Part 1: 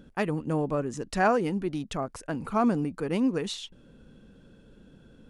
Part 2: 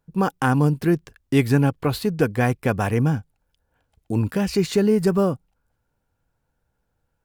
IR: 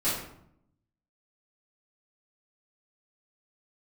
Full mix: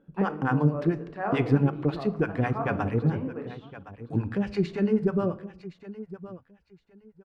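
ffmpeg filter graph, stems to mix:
-filter_complex "[0:a]bandpass=frequency=730:width_type=q:width=0.55:csg=0,volume=-9dB,asplit=3[link_01][link_02][link_03];[link_02]volume=-11dB[link_04];[link_03]volume=-20dB[link_05];[1:a]acrossover=split=570[link_06][link_07];[link_06]aeval=exprs='val(0)*(1-1/2+1/2*cos(2*PI*9.1*n/s))':channel_layout=same[link_08];[link_07]aeval=exprs='val(0)*(1-1/2-1/2*cos(2*PI*9.1*n/s))':channel_layout=same[link_09];[link_08][link_09]amix=inputs=2:normalize=0,volume=-2dB,asplit=3[link_10][link_11][link_12];[link_11]volume=-22.5dB[link_13];[link_12]volume=-15dB[link_14];[2:a]atrim=start_sample=2205[link_15];[link_04][link_13]amix=inputs=2:normalize=0[link_16];[link_16][link_15]afir=irnorm=-1:irlink=0[link_17];[link_05][link_14]amix=inputs=2:normalize=0,aecho=0:1:1066|2132|3198:1|0.2|0.04[link_18];[link_01][link_10][link_17][link_18]amix=inputs=4:normalize=0,lowpass=2700"

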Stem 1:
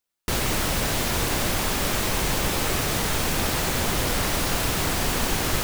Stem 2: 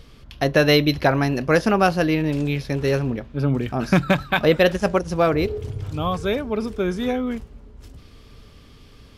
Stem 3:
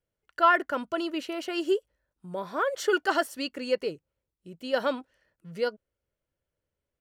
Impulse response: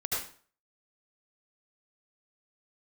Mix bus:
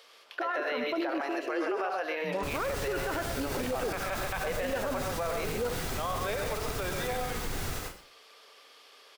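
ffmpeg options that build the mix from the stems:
-filter_complex "[0:a]alimiter=limit=-18dB:level=0:latency=1:release=174,adelay=2150,volume=-9.5dB,asplit=2[link_01][link_02];[link_02]volume=-4dB[link_03];[1:a]acrossover=split=2700[link_04][link_05];[link_05]acompressor=threshold=-45dB:ratio=4:attack=1:release=60[link_06];[link_04][link_06]amix=inputs=2:normalize=0,highpass=frequency=540:width=0.5412,highpass=frequency=540:width=1.3066,acompressor=threshold=-23dB:ratio=6,volume=-2.5dB,asplit=3[link_07][link_08][link_09];[link_08]volume=-13dB[link_10];[link_09]volume=-5.5dB[link_11];[2:a]volume=2dB,asplit=2[link_12][link_13];[link_13]volume=-20.5dB[link_14];[link_01][link_12]amix=inputs=2:normalize=0,afwtdn=0.0282,alimiter=limit=-19dB:level=0:latency=1,volume=0dB[link_15];[3:a]atrim=start_sample=2205[link_16];[link_03][link_10][link_14]amix=inputs=3:normalize=0[link_17];[link_17][link_16]afir=irnorm=-1:irlink=0[link_18];[link_11]aecho=0:1:132:1[link_19];[link_07][link_15][link_18][link_19]amix=inputs=4:normalize=0,alimiter=limit=-23.5dB:level=0:latency=1:release=37"

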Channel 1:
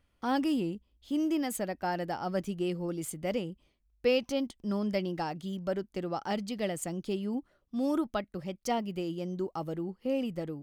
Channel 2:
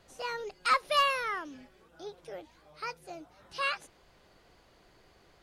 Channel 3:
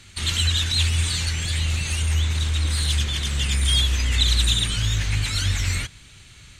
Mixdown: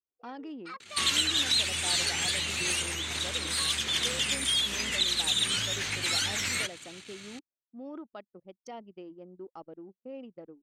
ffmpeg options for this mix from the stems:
ffmpeg -i stem1.wav -i stem2.wav -i stem3.wav -filter_complex "[0:a]volume=-8.5dB[link_01];[1:a]dynaudnorm=framelen=220:gausssize=5:maxgain=6dB,aecho=1:1:2.6:0.62,volume=-18dB[link_02];[2:a]acompressor=threshold=-23dB:ratio=6,adelay=800,volume=2.5dB[link_03];[link_01][link_02]amix=inputs=2:normalize=0,lowpass=6800,alimiter=level_in=8.5dB:limit=-24dB:level=0:latency=1:release=49,volume=-8.5dB,volume=0dB[link_04];[link_03][link_04]amix=inputs=2:normalize=0,highpass=270,anlmdn=0.0251" out.wav

